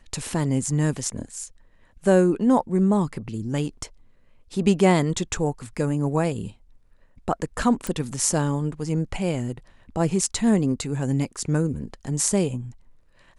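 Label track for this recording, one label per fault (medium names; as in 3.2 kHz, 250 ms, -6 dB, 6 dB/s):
7.870000	7.870000	pop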